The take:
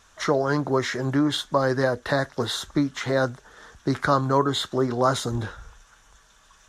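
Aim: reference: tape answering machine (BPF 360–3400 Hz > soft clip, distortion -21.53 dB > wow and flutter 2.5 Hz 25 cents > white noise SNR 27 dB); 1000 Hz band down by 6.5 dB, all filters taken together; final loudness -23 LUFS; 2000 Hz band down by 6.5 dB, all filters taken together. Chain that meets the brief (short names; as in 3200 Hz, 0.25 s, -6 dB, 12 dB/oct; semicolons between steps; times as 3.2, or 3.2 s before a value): BPF 360–3400 Hz; bell 1000 Hz -6.5 dB; bell 2000 Hz -5.5 dB; soft clip -16.5 dBFS; wow and flutter 2.5 Hz 25 cents; white noise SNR 27 dB; gain +7 dB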